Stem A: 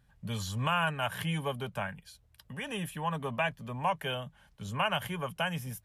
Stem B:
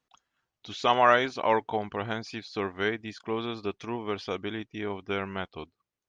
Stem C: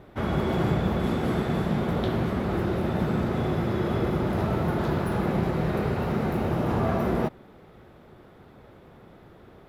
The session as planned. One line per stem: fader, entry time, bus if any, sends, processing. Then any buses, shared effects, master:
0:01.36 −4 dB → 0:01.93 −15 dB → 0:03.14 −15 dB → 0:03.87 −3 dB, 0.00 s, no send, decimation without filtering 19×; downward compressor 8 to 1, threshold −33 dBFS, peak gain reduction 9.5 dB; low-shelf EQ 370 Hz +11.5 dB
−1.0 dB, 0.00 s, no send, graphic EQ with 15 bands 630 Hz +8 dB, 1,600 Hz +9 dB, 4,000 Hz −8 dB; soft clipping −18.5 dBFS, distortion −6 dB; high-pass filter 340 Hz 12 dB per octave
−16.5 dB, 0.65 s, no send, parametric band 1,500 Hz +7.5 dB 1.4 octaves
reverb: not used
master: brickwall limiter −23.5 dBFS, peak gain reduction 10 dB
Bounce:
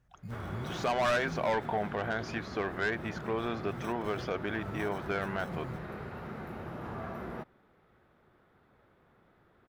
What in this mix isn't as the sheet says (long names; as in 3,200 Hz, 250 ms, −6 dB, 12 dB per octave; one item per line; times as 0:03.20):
stem A −4.0 dB → −13.5 dB
stem B: missing high-pass filter 340 Hz 12 dB per octave
stem C: entry 0.65 s → 0.15 s